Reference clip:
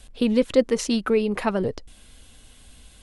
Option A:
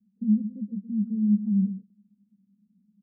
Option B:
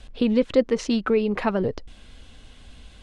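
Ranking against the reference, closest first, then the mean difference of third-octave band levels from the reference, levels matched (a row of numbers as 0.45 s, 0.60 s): B, A; 2.5 dB, 14.5 dB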